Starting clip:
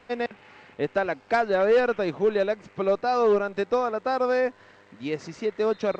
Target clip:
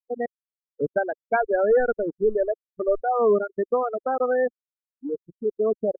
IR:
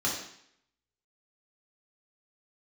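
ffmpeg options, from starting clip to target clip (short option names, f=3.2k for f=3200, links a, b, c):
-filter_complex "[0:a]asplit=2[a][b];[1:a]atrim=start_sample=2205,highshelf=f=2.5k:g=-4.5[c];[b][c]afir=irnorm=-1:irlink=0,volume=-31dB[d];[a][d]amix=inputs=2:normalize=0,asettb=1/sr,asplit=3[e][f][g];[e]atrim=end=1.004[h];[f]atrim=start=1:end=3.04,asetpts=PTS-STARTPTS,afade=t=in:d=0.004:c=qsin,afade=t=out:st=2.036:d=0.004:c=qsin,asubboost=boost=11.5:cutoff=55[i];[g]atrim=start=3.036[j];[h][i]acrossfade=d=0.004:c1=hsin:c2=qsin[k];[k][j]acrossfade=d=0.004:c1=qsin:c2=hsin,afftfilt=real='re*gte(hypot(re,im),0.158)':imag='im*gte(hypot(re,im),0.158)':win_size=1024:overlap=0.75,anlmdn=25.1,volume=1.5dB"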